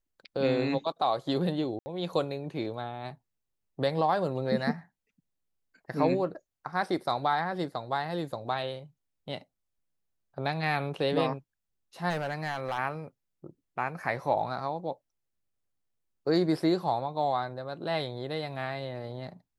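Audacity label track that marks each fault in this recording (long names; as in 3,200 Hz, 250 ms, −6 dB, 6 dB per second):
1.790000	1.860000	drop-out 70 ms
12.090000	12.780000	clipping −26 dBFS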